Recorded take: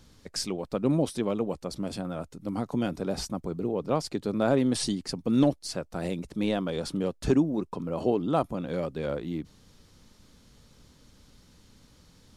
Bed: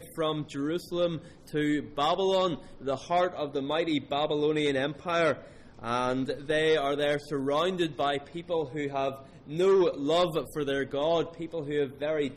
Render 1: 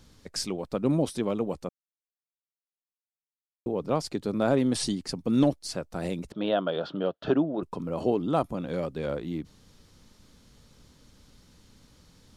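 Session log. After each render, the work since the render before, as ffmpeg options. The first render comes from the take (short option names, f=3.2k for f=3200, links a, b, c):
-filter_complex "[0:a]asettb=1/sr,asplit=3[a][b][c];[a]atrim=end=6.324[d];[b]atrim=start=6.32:end=7.63,asetpts=PTS-STARTPTS,afade=t=in:d=0.004:c=qsin,afade=t=out:st=1.306:d=0.004:c=qsin,highpass=170,equalizer=f=230:t=q:w=4:g=-6,equalizer=f=640:t=q:w=4:g=10,equalizer=f=1.4k:t=q:w=4:g=8,equalizer=f=2.2k:t=q:w=4:g=-9,equalizer=f=3.2k:t=q:w=4:g=7,lowpass=f=3.7k:w=0.5412,lowpass=f=3.7k:w=1.3066[e];[c]atrim=start=7.626[f];[d][e]acrossfade=d=0.004:c1=hsin:c2=qsin[g];[g][f]acrossfade=d=0.004:c1=qsin:c2=hsin,asplit=3[h][i][j];[h]atrim=end=1.69,asetpts=PTS-STARTPTS,afade=t=out:st=1.686:d=0.004:c=hsin[k];[i]atrim=start=1.69:end=3.66,asetpts=PTS-STARTPTS,volume=0[l];[j]atrim=start=3.66,asetpts=PTS-STARTPTS,afade=t=in:d=0.004:c=hsin[m];[k][l][m]concat=n=3:v=0:a=1"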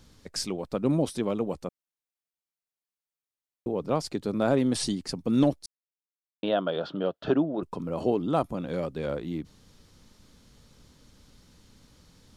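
-filter_complex "[0:a]asplit=3[a][b][c];[a]atrim=end=5.66,asetpts=PTS-STARTPTS,afade=t=out:st=5.656:d=0.004:c=hsin[d];[b]atrim=start=5.66:end=6.43,asetpts=PTS-STARTPTS,volume=0[e];[c]atrim=start=6.43,asetpts=PTS-STARTPTS,afade=t=in:d=0.004:c=hsin[f];[d][e][f]concat=n=3:v=0:a=1"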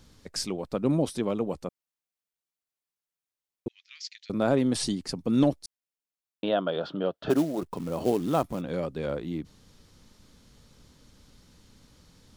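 -filter_complex "[0:a]asettb=1/sr,asplit=3[a][b][c];[a]atrim=end=3.684[d];[b]atrim=start=3.68:end=4.3,asetpts=PTS-STARTPTS,afade=t=in:d=0.004:c=qsin,afade=t=out:st=0.616:d=0.004:c=qsin,asuperpass=centerf=3600:order=12:qfactor=0.75[e];[c]atrim=start=4.296[f];[d][e]acrossfade=d=0.004:c1=hsin:c2=qsin[g];[g][f]acrossfade=d=0.004:c1=qsin:c2=hsin,asplit=3[h][i][j];[h]afade=t=out:st=7.29:d=0.02[k];[i]acrusher=bits=5:mode=log:mix=0:aa=0.000001,afade=t=in:st=7.29:d=0.02,afade=t=out:st=8.6:d=0.02[l];[j]afade=t=in:st=8.6:d=0.02[m];[k][l][m]amix=inputs=3:normalize=0"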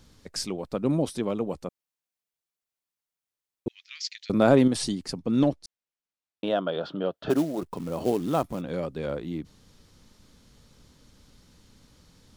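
-filter_complex "[0:a]asettb=1/sr,asplit=3[a][b][c];[a]atrim=end=3.674[d];[b]atrim=start=3.67:end=4.68,asetpts=PTS-STARTPTS,afade=t=in:d=0.004:c=qsin,afade=t=out:st=1.006:d=0.004:c=qsin,acontrast=47[e];[c]atrim=start=4.676[f];[d][e]acrossfade=d=0.004:c1=hsin:c2=qsin[g];[g][f]acrossfade=d=0.004:c1=qsin:c2=hsin,asettb=1/sr,asplit=3[h][i][j];[h]atrim=end=5.194[k];[i]atrim=start=5.19:end=6.62,asetpts=PTS-STARTPTS,afade=t=in:d=0.004:c=qsin,afade=t=out:st=1.426:d=0.004:c=qsin,adynamicsmooth=sensitivity=3:basefreq=7.6k[l];[j]atrim=start=6.616[m];[k][l]acrossfade=d=0.004:c1=hsin:c2=qsin[n];[n][m]acrossfade=d=0.004:c1=qsin:c2=hsin"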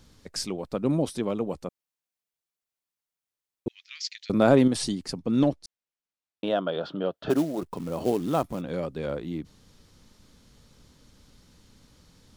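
-af anull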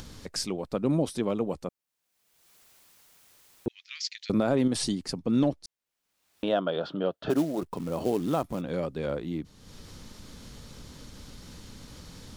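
-af "alimiter=limit=-15.5dB:level=0:latency=1:release=93,acompressor=mode=upward:threshold=-34dB:ratio=2.5"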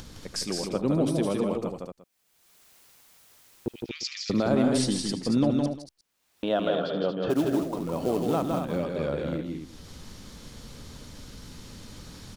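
-af "aecho=1:1:76|162|177|231|351:0.168|0.631|0.141|0.447|0.112"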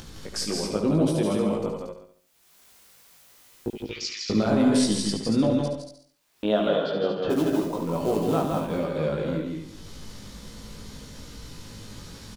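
-filter_complex "[0:a]asplit=2[a][b];[b]adelay=19,volume=-3dB[c];[a][c]amix=inputs=2:normalize=0,aecho=1:1:71|142|213|284|355:0.376|0.158|0.0663|0.0278|0.0117"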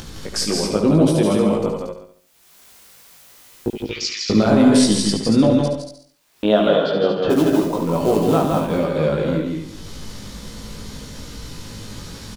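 -af "volume=7.5dB,alimiter=limit=-3dB:level=0:latency=1"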